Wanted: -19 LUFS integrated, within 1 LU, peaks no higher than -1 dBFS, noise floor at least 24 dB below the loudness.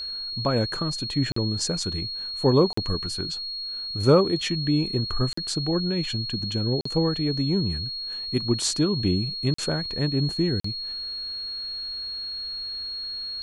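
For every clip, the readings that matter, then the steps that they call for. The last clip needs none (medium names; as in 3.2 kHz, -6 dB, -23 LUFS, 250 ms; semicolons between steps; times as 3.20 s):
dropouts 6; longest dropout 44 ms; steady tone 4.3 kHz; tone level -30 dBFS; loudness -25.5 LUFS; peak level -6.5 dBFS; loudness target -19.0 LUFS
-> interpolate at 1.32/2.73/5.33/6.81/9.54/10.60 s, 44 ms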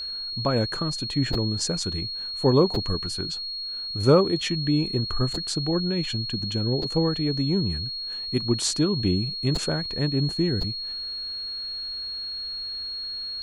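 dropouts 0; steady tone 4.3 kHz; tone level -30 dBFS
-> band-stop 4.3 kHz, Q 30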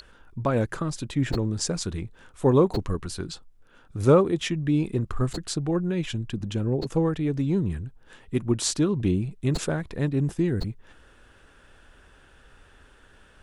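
steady tone not found; loudness -26.0 LUFS; peak level -7.0 dBFS; loudness target -19.0 LUFS
-> trim +7 dB; peak limiter -1 dBFS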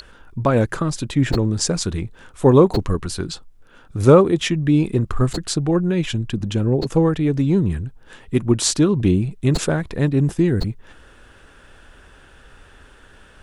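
loudness -19.0 LUFS; peak level -1.0 dBFS; noise floor -48 dBFS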